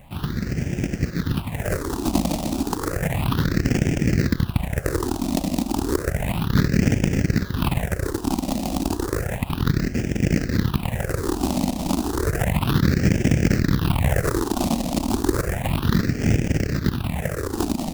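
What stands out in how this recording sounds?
aliases and images of a low sample rate 2200 Hz, jitter 20%; phasing stages 6, 0.32 Hz, lowest notch 110–1100 Hz

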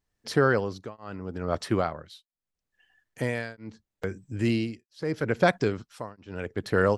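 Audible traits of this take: tremolo triangle 0.77 Hz, depth 100%

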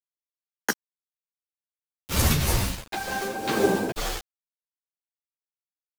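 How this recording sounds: a quantiser's noise floor 6-bit, dither none; tremolo triangle 2 Hz, depth 70%; a shimmering, thickened sound

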